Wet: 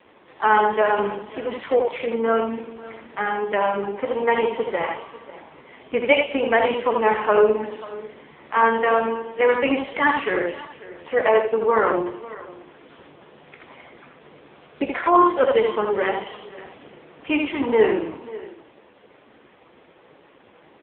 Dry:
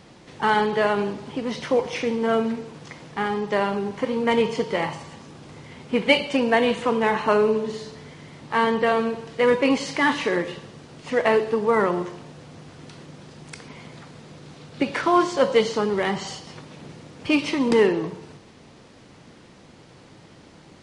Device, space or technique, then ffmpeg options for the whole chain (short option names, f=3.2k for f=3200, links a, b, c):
satellite phone: -filter_complex "[0:a]asettb=1/sr,asplit=3[a][b][c];[a]atrim=end=15.864[d];[b]atrim=start=15.86:end=16.35,asetpts=PTS-STARTPTS,afade=t=in:d=0.004:c=qsin,afade=t=out:st=0.486:d=0.004:c=qsin,equalizer=f=150:w=1.8:g=-2.5[e];[c]atrim=start=16.346[f];[d][e]acrossfade=d=0.004:c1=hsin:c2=qsin[g];[g][f]acrossfade=d=0.004:c1=qsin:c2=hsin,highpass=360,lowpass=3.3k,aecho=1:1:14|47|79:0.266|0.133|0.631,aecho=1:1:543:0.126,volume=3dB" -ar 8000 -c:a libopencore_amrnb -b:a 5150